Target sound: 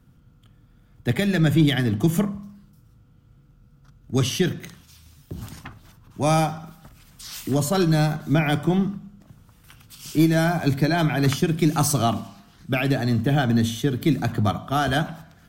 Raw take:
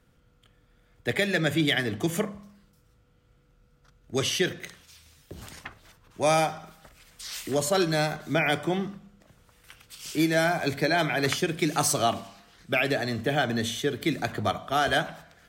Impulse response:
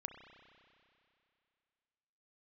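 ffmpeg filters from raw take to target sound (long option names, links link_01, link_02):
-af "equalizer=frequency=125:width_type=o:width=1:gain=6,equalizer=frequency=250:width_type=o:width=1:gain=4,equalizer=frequency=500:width_type=o:width=1:gain=-9,equalizer=frequency=2000:width_type=o:width=1:gain=-8,equalizer=frequency=4000:width_type=o:width=1:gain=-4,equalizer=frequency=8000:width_type=o:width=1:gain=-5,aeval=exprs='0.224*(cos(1*acos(clip(val(0)/0.224,-1,1)))-cos(1*PI/2))+0.00631*(cos(4*acos(clip(val(0)/0.224,-1,1)))-cos(4*PI/2))':channel_layout=same,volume=6dB"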